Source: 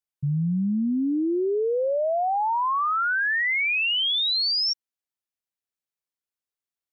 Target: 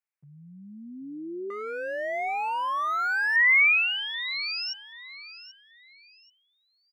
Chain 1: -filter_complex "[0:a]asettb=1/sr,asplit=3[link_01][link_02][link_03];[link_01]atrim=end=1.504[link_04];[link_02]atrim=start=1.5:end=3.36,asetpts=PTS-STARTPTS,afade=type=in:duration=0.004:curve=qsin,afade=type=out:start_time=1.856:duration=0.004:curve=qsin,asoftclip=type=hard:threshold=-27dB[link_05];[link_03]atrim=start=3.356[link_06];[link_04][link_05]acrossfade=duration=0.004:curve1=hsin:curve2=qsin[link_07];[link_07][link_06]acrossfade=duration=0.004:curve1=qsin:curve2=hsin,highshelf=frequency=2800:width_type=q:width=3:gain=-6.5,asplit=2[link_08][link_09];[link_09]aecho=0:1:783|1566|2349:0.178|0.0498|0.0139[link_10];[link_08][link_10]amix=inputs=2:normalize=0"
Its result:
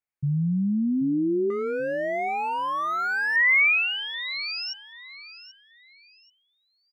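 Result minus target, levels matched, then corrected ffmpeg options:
500 Hz band +6.5 dB
-filter_complex "[0:a]asettb=1/sr,asplit=3[link_01][link_02][link_03];[link_01]atrim=end=1.504[link_04];[link_02]atrim=start=1.5:end=3.36,asetpts=PTS-STARTPTS,afade=type=in:duration=0.004:curve=qsin,afade=type=out:start_time=1.856:duration=0.004:curve=qsin,asoftclip=type=hard:threshold=-27dB[link_05];[link_03]atrim=start=3.356[link_06];[link_04][link_05]acrossfade=duration=0.004:curve1=hsin:curve2=qsin[link_07];[link_07][link_06]acrossfade=duration=0.004:curve1=qsin:curve2=hsin,highpass=670,highshelf=frequency=2800:width_type=q:width=3:gain=-6.5,asplit=2[link_08][link_09];[link_09]aecho=0:1:783|1566|2349:0.178|0.0498|0.0139[link_10];[link_08][link_10]amix=inputs=2:normalize=0"

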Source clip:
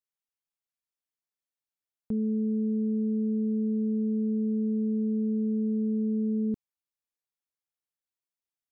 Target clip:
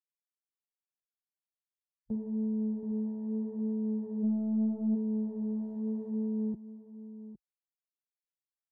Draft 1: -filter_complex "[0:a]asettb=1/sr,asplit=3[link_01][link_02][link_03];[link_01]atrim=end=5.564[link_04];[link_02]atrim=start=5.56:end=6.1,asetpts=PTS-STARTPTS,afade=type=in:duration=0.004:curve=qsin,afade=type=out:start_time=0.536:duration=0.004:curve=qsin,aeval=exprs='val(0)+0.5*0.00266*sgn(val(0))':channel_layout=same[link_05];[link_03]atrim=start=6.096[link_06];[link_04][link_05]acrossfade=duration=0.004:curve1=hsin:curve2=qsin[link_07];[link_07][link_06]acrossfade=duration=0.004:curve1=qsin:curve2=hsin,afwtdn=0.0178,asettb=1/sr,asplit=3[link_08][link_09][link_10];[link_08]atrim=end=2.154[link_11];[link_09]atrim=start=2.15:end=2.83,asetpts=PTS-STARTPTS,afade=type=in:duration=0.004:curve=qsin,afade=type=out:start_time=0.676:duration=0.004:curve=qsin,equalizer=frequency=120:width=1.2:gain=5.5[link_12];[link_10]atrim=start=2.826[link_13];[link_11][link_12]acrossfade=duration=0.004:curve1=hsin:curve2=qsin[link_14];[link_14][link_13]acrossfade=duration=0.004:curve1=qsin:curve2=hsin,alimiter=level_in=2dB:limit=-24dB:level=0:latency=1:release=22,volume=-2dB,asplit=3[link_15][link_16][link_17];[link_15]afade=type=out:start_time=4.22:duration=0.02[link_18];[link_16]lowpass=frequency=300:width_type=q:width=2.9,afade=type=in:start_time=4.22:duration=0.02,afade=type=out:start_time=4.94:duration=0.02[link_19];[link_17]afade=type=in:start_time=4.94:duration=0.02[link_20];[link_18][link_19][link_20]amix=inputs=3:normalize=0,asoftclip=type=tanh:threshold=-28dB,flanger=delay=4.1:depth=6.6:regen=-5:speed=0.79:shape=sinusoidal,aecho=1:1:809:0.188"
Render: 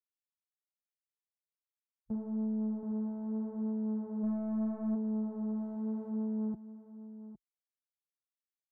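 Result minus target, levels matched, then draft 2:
soft clipping: distortion +10 dB
-filter_complex "[0:a]asettb=1/sr,asplit=3[link_01][link_02][link_03];[link_01]atrim=end=5.564[link_04];[link_02]atrim=start=5.56:end=6.1,asetpts=PTS-STARTPTS,afade=type=in:duration=0.004:curve=qsin,afade=type=out:start_time=0.536:duration=0.004:curve=qsin,aeval=exprs='val(0)+0.5*0.00266*sgn(val(0))':channel_layout=same[link_05];[link_03]atrim=start=6.096[link_06];[link_04][link_05]acrossfade=duration=0.004:curve1=hsin:curve2=qsin[link_07];[link_07][link_06]acrossfade=duration=0.004:curve1=qsin:curve2=hsin,afwtdn=0.0178,asettb=1/sr,asplit=3[link_08][link_09][link_10];[link_08]atrim=end=2.154[link_11];[link_09]atrim=start=2.15:end=2.83,asetpts=PTS-STARTPTS,afade=type=in:duration=0.004:curve=qsin,afade=type=out:start_time=0.676:duration=0.004:curve=qsin,equalizer=frequency=120:width=1.2:gain=5.5[link_12];[link_10]atrim=start=2.826[link_13];[link_11][link_12]acrossfade=duration=0.004:curve1=hsin:curve2=qsin[link_14];[link_14][link_13]acrossfade=duration=0.004:curve1=qsin:curve2=hsin,alimiter=level_in=2dB:limit=-24dB:level=0:latency=1:release=22,volume=-2dB,asplit=3[link_15][link_16][link_17];[link_15]afade=type=out:start_time=4.22:duration=0.02[link_18];[link_16]lowpass=frequency=300:width_type=q:width=2.9,afade=type=in:start_time=4.22:duration=0.02,afade=type=out:start_time=4.94:duration=0.02[link_19];[link_17]afade=type=in:start_time=4.94:duration=0.02[link_20];[link_18][link_19][link_20]amix=inputs=3:normalize=0,asoftclip=type=tanh:threshold=-20.5dB,flanger=delay=4.1:depth=6.6:regen=-5:speed=0.79:shape=sinusoidal,aecho=1:1:809:0.188"

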